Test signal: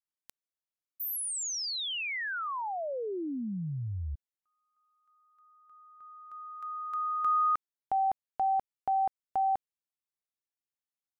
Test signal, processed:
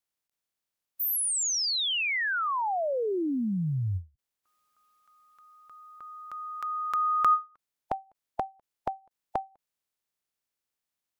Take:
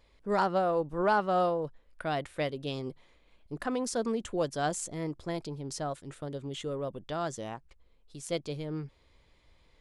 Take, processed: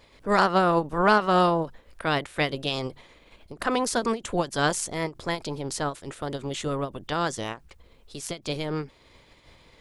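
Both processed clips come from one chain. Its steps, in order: spectral limiter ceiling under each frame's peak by 13 dB; ending taper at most 260 dB/s; gain +7 dB

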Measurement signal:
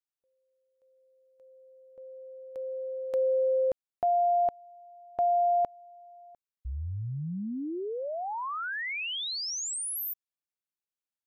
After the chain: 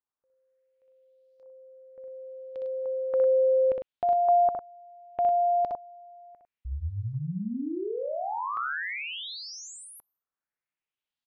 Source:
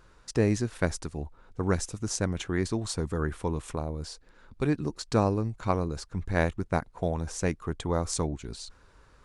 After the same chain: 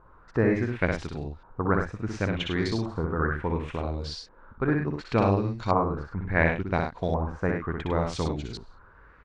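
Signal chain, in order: loudspeakers at several distances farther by 21 m -4 dB, 35 m -8 dB; LFO low-pass saw up 0.7 Hz 960–5000 Hz

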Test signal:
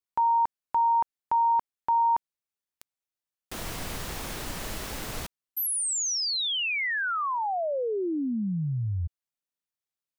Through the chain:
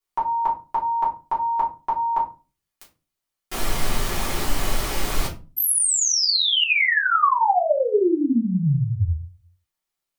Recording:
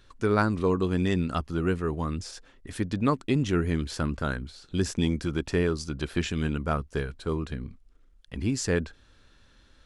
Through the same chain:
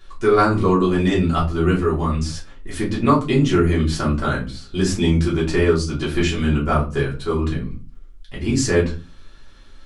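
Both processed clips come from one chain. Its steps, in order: low shelf 450 Hz -3 dB; shoebox room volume 130 m³, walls furnished, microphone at 3.2 m; gain +2 dB

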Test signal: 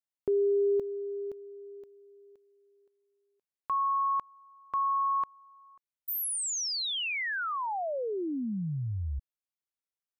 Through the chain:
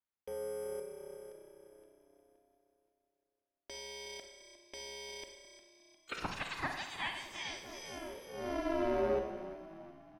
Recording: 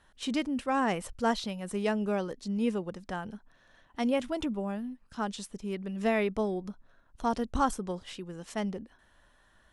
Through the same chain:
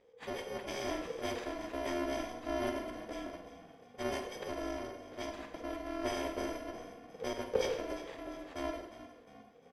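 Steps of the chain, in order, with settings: FFT order left unsorted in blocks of 128 samples; LPF 2000 Hz 12 dB/oct; on a send: frequency-shifting echo 0.354 s, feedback 48%, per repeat +32 Hz, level -13.5 dB; on the sum: ring modulator 480 Hz; Schroeder reverb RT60 0.79 s, combs from 33 ms, DRR 5.5 dB; gain +4 dB

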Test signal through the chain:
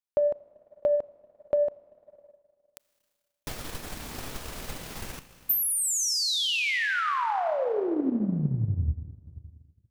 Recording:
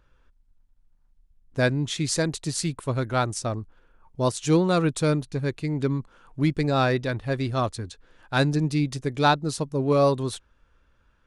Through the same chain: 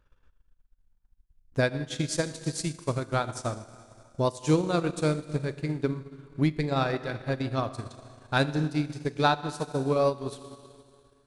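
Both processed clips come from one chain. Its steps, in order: Schroeder reverb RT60 2 s, combs from 26 ms, DRR 6 dB; transient shaper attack +7 dB, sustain -9 dB; gain -6.5 dB

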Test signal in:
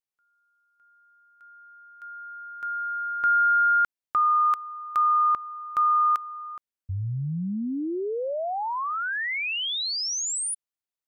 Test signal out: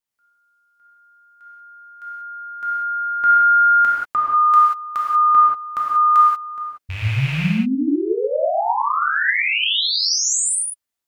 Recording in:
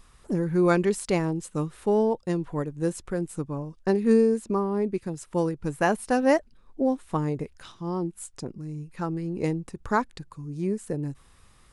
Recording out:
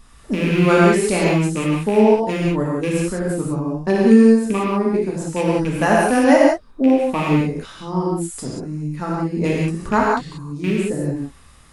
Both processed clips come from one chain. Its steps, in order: rattling part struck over -28 dBFS, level -24 dBFS; non-linear reverb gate 0.21 s flat, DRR -5 dB; gain +3 dB

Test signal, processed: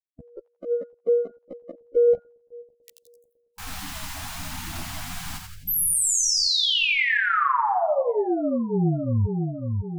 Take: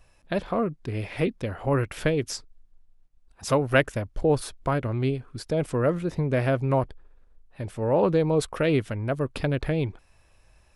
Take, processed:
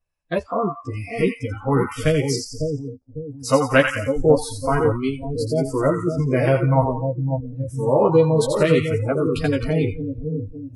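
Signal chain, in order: chorus voices 2, 0.21 Hz, delay 13 ms, depth 2.2 ms; in parallel at -12 dB: soft clip -17 dBFS; on the sum: split-band echo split 700 Hz, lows 0.552 s, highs 86 ms, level -4.5 dB; spectral noise reduction 28 dB; gain +6 dB

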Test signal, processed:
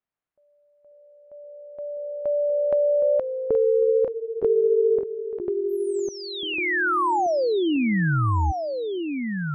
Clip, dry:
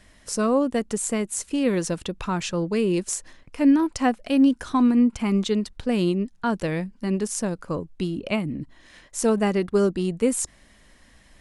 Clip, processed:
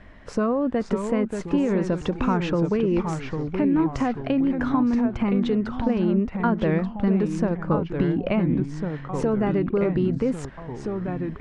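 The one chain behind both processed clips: LPF 1800 Hz 12 dB/oct; limiter -19.5 dBFS; compressor, threshold -27 dBFS; echoes that change speed 0.491 s, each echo -2 st, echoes 3, each echo -6 dB; gain +8 dB

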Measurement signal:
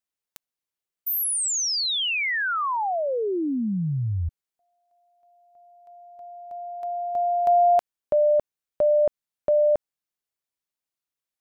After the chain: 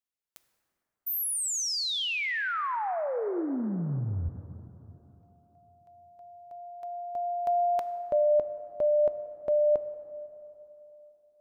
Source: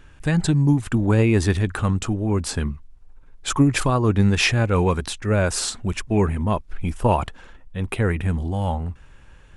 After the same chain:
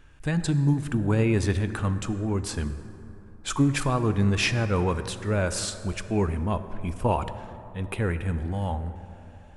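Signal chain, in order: plate-style reverb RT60 3.3 s, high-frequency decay 0.4×, DRR 10.5 dB; gain -5.5 dB

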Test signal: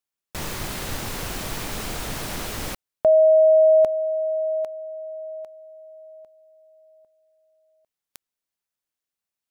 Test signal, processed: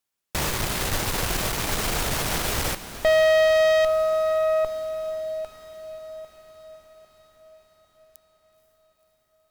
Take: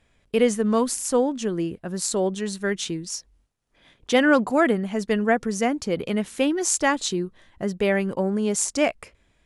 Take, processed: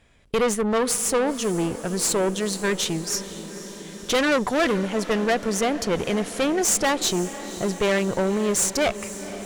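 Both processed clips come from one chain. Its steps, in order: tube stage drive 24 dB, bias 0.55; diffused feedback echo 0.502 s, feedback 67%, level -14.5 dB; dynamic EQ 240 Hz, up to -6 dB, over -44 dBFS, Q 1.6; gain +8 dB

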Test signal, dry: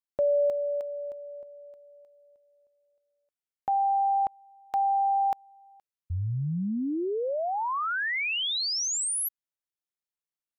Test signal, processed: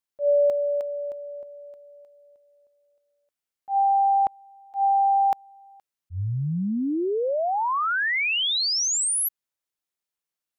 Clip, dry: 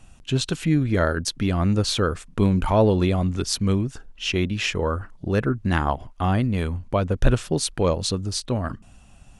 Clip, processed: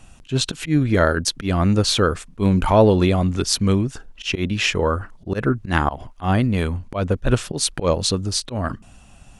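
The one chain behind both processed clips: low shelf 200 Hz -3 dB; auto swell 0.102 s; gain +5 dB

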